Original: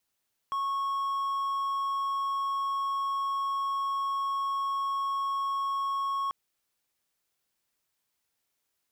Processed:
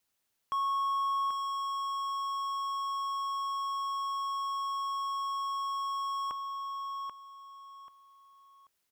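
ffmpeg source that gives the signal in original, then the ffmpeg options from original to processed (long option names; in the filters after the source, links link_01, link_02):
-f lavfi -i "aevalsrc='0.0531*(1-4*abs(mod(1100*t+0.25,1)-0.5))':duration=5.79:sample_rate=44100"
-af "aecho=1:1:786|1572|2358:0.501|0.135|0.0365"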